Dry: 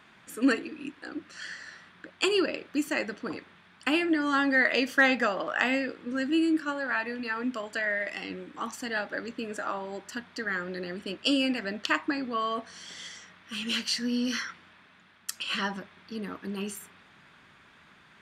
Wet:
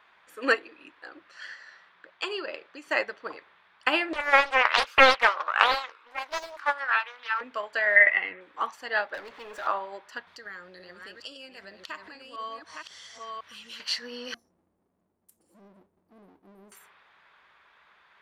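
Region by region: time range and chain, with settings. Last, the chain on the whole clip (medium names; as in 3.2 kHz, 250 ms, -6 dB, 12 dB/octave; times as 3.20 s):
1.51–2.89 s: Chebyshev band-pass 120–7700 Hz + compression 2.5:1, threshold -29 dBFS
4.13–7.41 s: high-pass 820 Hz + comb 0.8 ms, depth 54% + loudspeaker Doppler distortion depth 0.98 ms
7.96–8.41 s: block-companded coder 7-bit + low-pass 3 kHz 24 dB/octave + peaking EQ 2 kHz +12 dB 0.4 oct
9.14–9.67 s: waveshaping leveller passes 3 + compression 16:1, threshold -31 dBFS + hard clipper -34 dBFS
10.27–13.80 s: chunks repeated in reverse 523 ms, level -7 dB + tone controls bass +11 dB, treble +12 dB + compression 4:1, threshold -36 dBFS
14.34–16.72 s: inverse Chebyshev band-stop 840–3700 Hz, stop band 60 dB + tone controls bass -7 dB, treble -11 dB + power-law waveshaper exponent 0.7
whole clip: graphic EQ 125/250/500/1000/2000/4000/8000 Hz -11/-10/+6/+8/+4/+4/-6 dB; upward expansion 1.5:1, over -38 dBFS; trim +2.5 dB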